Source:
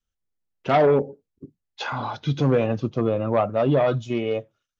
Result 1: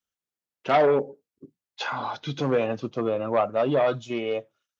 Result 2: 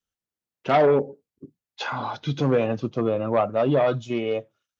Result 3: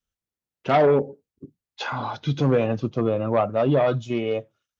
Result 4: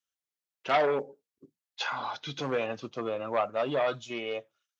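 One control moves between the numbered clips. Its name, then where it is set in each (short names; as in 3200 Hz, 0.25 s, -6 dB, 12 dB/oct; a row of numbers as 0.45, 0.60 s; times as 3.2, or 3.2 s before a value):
HPF, cutoff: 390, 150, 48, 1300 Hz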